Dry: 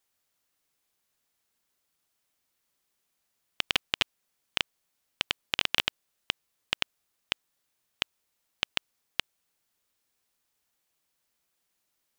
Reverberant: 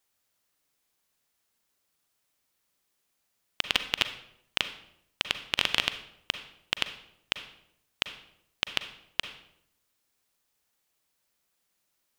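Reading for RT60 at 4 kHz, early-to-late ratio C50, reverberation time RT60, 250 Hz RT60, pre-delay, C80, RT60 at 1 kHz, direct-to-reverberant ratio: 0.55 s, 11.0 dB, 0.75 s, 0.85 s, 37 ms, 14.0 dB, 0.70 s, 9.5 dB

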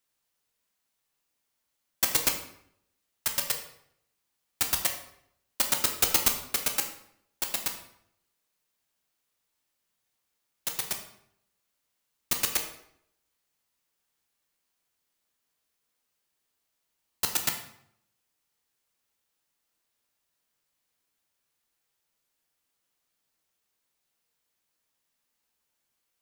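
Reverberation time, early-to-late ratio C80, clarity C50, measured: 0.70 s, 10.5 dB, 8.0 dB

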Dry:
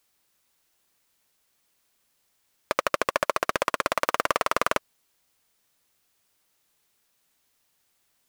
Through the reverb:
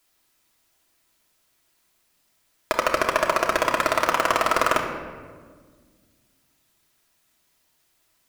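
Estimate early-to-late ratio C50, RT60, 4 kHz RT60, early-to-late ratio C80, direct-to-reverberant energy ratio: 5.5 dB, 1.6 s, 0.95 s, 7.5 dB, −0.5 dB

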